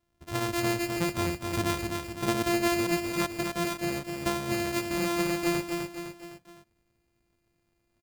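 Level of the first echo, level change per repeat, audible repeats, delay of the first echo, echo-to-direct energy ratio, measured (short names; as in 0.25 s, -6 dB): -5.0 dB, -6.0 dB, 4, 0.255 s, -4.0 dB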